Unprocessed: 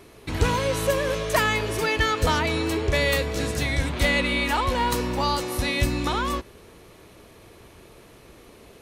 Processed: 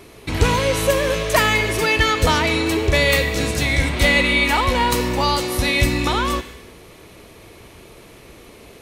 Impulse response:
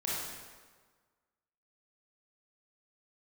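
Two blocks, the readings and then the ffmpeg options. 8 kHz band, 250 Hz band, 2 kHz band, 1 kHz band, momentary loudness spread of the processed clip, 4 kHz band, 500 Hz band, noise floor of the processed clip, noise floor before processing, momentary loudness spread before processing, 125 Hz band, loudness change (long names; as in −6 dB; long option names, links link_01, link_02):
+6.5 dB, +5.0 dB, +7.0 dB, +5.0 dB, 5 LU, +7.0 dB, +5.0 dB, −44 dBFS, −50 dBFS, 4 LU, +5.0 dB, +6.0 dB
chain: -filter_complex "[0:a]asplit=2[link_01][link_02];[link_02]highshelf=frequency=1600:width_type=q:width=3:gain=8[link_03];[1:a]atrim=start_sample=2205,afade=type=out:start_time=0.41:duration=0.01,atrim=end_sample=18522[link_04];[link_03][link_04]afir=irnorm=-1:irlink=0,volume=-20dB[link_05];[link_01][link_05]amix=inputs=2:normalize=0,volume=4.5dB"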